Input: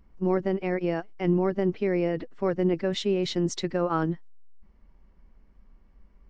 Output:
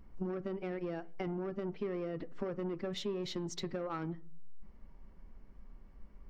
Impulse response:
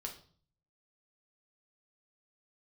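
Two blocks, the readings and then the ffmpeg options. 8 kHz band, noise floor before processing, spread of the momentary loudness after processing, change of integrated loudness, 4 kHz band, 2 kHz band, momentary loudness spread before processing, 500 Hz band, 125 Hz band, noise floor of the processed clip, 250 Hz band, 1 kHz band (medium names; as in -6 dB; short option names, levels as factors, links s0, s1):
no reading, -58 dBFS, 3 LU, -12.5 dB, -9.5 dB, -12.5 dB, 5 LU, -12.0 dB, -12.5 dB, -56 dBFS, -12.5 dB, -12.5 dB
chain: -filter_complex "[0:a]asoftclip=type=tanh:threshold=0.0841,acompressor=threshold=0.0141:ratio=10,asplit=2[s0][s1];[1:a]atrim=start_sample=2205,lowpass=2000[s2];[s1][s2]afir=irnorm=-1:irlink=0,volume=0.447[s3];[s0][s3]amix=inputs=2:normalize=0"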